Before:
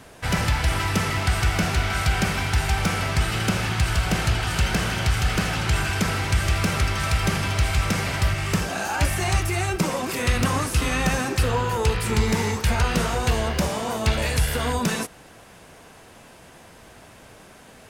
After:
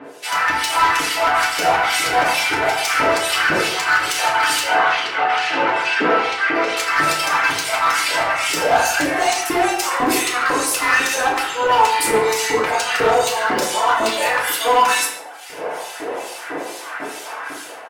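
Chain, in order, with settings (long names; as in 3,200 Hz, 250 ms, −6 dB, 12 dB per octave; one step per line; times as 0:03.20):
reverb reduction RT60 0.89 s
automatic gain control gain up to 14 dB
brickwall limiter −7 dBFS, peak gain reduction 5.5 dB
downward compressor 2 to 1, threshold −21 dBFS, peak gain reduction 6 dB
two-band tremolo in antiphase 2.3 Hz, depth 100%, crossover 2,400 Hz
auto-filter high-pass saw up 2 Hz 320–1,700 Hz
hard clipping −21.5 dBFS, distortion −12 dB
0:04.66–0:06.77: band-pass filter 210–3,300 Hz
far-end echo of a speakerphone 140 ms, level −9 dB
feedback delay network reverb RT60 0.64 s, low-frequency decay 1.1×, high-frequency decay 0.7×, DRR −2.5 dB
saturating transformer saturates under 600 Hz
level +5.5 dB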